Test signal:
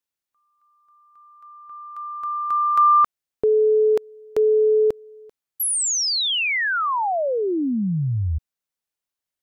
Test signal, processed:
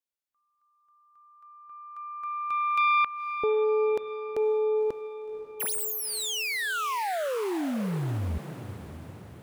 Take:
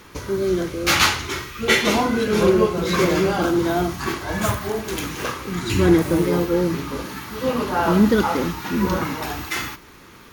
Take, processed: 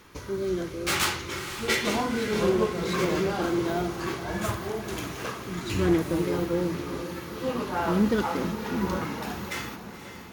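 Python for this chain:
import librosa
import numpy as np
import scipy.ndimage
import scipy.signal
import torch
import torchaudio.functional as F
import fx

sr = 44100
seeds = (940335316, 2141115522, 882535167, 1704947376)

y = fx.self_delay(x, sr, depth_ms=0.12)
y = fx.echo_diffused(y, sr, ms=525, feedback_pct=55, wet_db=-11)
y = y * librosa.db_to_amplitude(-7.5)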